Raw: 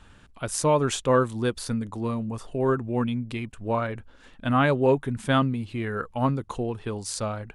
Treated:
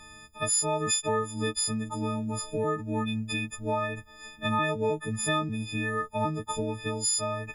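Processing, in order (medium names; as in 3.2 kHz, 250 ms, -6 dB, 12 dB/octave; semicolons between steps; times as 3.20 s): partials quantised in pitch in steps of 6 st; compression 3:1, threshold -27 dBFS, peak gain reduction 11.5 dB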